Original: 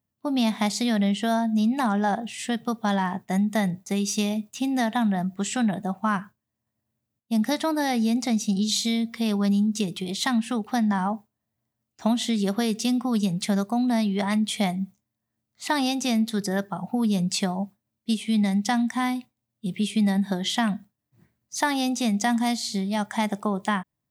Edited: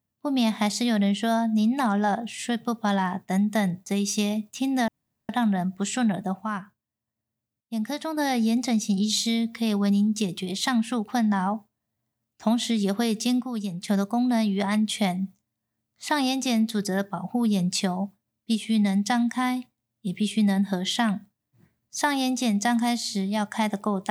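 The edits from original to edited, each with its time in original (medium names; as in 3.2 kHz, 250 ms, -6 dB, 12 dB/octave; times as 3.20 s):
4.88 s: insert room tone 0.41 s
6.03–7.76 s: gain -5.5 dB
13.00–13.47 s: gain -6.5 dB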